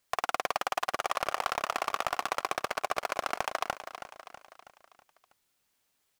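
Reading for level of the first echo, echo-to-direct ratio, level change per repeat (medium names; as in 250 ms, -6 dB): -11.0 dB, -9.5 dB, -6.0 dB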